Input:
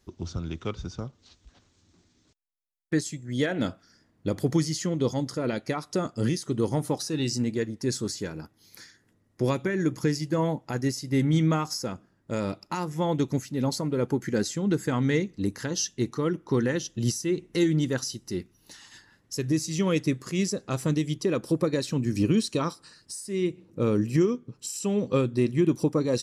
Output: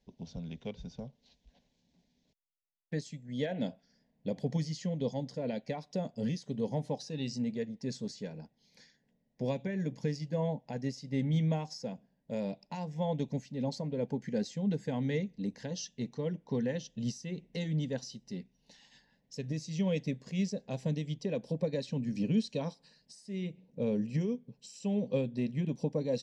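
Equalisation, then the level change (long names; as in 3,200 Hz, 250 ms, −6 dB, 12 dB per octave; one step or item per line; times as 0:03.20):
high-frequency loss of the air 150 metres
phaser with its sweep stopped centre 340 Hz, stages 6
−4.0 dB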